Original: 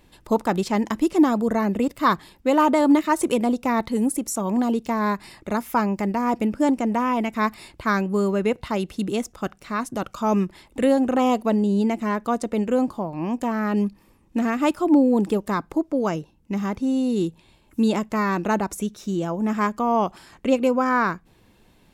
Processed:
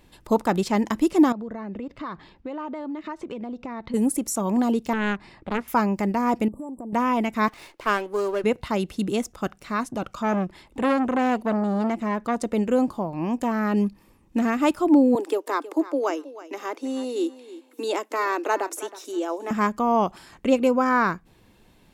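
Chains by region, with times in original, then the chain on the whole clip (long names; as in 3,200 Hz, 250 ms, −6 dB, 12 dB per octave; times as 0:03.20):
0:01.32–0:03.94: downward compressor, threshold −30 dBFS + high-frequency loss of the air 190 metres
0:04.93–0:05.68: head-to-tape spacing loss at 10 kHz 20 dB + highs frequency-modulated by the lows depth 0.74 ms
0:06.48–0:06.93: linear-phase brick-wall band-stop 1,200–7,400 Hz + downward compressor 8 to 1, threshold −32 dBFS
0:07.48–0:08.44: high-pass filter 350 Hz 24 dB per octave + windowed peak hold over 5 samples
0:09.85–0:12.38: high-shelf EQ 8,100 Hz −7.5 dB + saturating transformer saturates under 1,000 Hz
0:15.15–0:19.51: Butterworth high-pass 280 Hz 72 dB per octave + repeating echo 320 ms, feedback 18%, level −16 dB
whole clip: no processing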